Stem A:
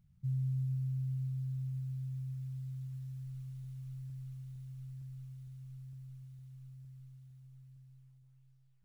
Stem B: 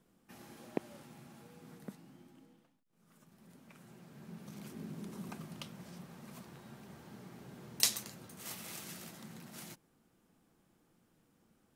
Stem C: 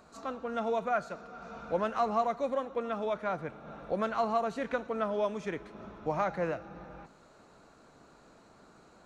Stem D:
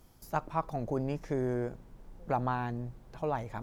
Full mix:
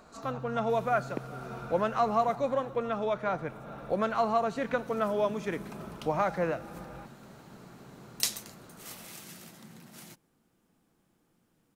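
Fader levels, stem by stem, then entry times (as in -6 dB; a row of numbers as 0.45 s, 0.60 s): -9.5 dB, 0.0 dB, +2.5 dB, -16.5 dB; 0.00 s, 0.40 s, 0.00 s, 0.00 s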